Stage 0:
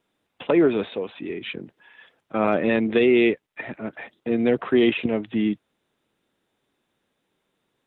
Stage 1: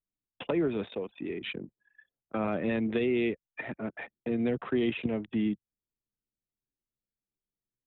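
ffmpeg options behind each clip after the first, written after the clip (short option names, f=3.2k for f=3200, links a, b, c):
-filter_complex "[0:a]anlmdn=0.631,acrossover=split=180[a][b];[b]acompressor=threshold=-33dB:ratio=2[c];[a][c]amix=inputs=2:normalize=0,volume=-2dB"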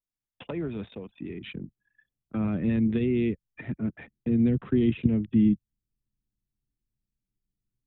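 -af "asubboost=boost=11.5:cutoff=210,volume=-4.5dB"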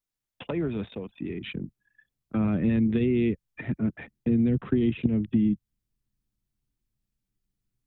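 -af "acompressor=threshold=-23dB:ratio=6,volume=3.5dB"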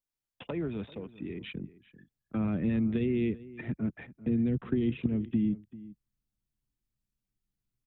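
-filter_complex "[0:a]asplit=2[a][b];[b]adelay=390.7,volume=-18dB,highshelf=f=4k:g=-8.79[c];[a][c]amix=inputs=2:normalize=0,volume=-5dB"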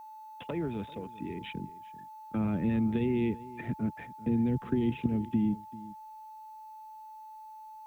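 -af "aeval=exprs='val(0)+0.00562*sin(2*PI*870*n/s)':c=same,acrusher=bits=10:mix=0:aa=0.000001"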